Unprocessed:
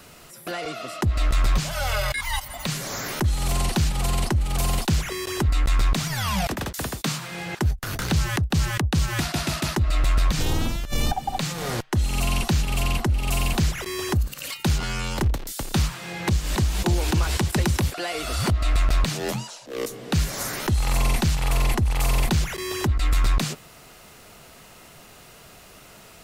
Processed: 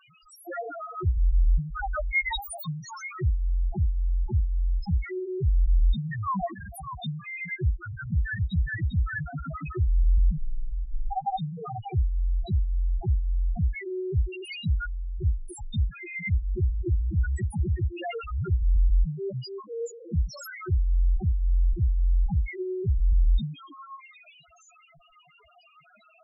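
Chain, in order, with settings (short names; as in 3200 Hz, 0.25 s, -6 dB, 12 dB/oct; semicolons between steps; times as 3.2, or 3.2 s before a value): tilt shelf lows -5 dB, about 810 Hz; delay with a stepping band-pass 0.294 s, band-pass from 370 Hz, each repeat 1.4 oct, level -6 dB; loudest bins only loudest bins 1; gain +8 dB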